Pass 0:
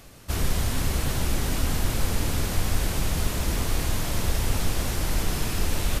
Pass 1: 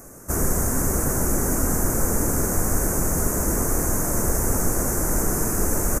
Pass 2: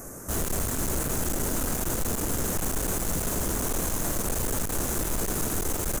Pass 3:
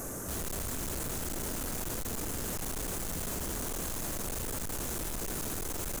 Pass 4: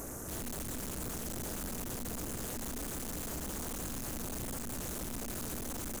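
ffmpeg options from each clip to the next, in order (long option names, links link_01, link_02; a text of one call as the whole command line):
ffmpeg -i in.wav -af "firequalizer=gain_entry='entry(100,0);entry(200,6);entry(380,9);entry(820,4);entry(1500,5);entry(3400,-28);entry(6300,10)':delay=0.05:min_phase=1" out.wav
ffmpeg -i in.wav -af "aeval=exprs='(tanh(31.6*val(0)+0.35)-tanh(0.35))/31.6':channel_layout=same,volume=4dB" out.wav
ffmpeg -i in.wav -af "asoftclip=type=hard:threshold=-38dB,volume=3dB" out.wav
ffmpeg -i in.wav -af "aeval=exprs='val(0)+0.00562*(sin(2*PI*60*n/s)+sin(2*PI*2*60*n/s)/2+sin(2*PI*3*60*n/s)/3+sin(2*PI*4*60*n/s)/4+sin(2*PI*5*60*n/s)/5)':channel_layout=same,tremolo=f=240:d=0.974" out.wav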